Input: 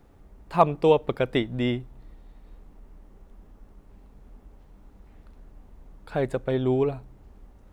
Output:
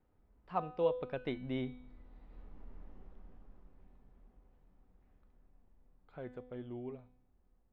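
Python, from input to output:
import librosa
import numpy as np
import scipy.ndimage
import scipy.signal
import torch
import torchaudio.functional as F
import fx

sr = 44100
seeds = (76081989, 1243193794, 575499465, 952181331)

y = fx.doppler_pass(x, sr, speed_mps=21, closest_m=10.0, pass_at_s=2.78)
y = scipy.signal.sosfilt(scipy.signal.butter(2, 3100.0, 'lowpass', fs=sr, output='sos'), y)
y = fx.comb_fb(y, sr, f0_hz=250.0, decay_s=0.71, harmonics='all', damping=0.0, mix_pct=70)
y = y * 10.0 ** (6.5 / 20.0)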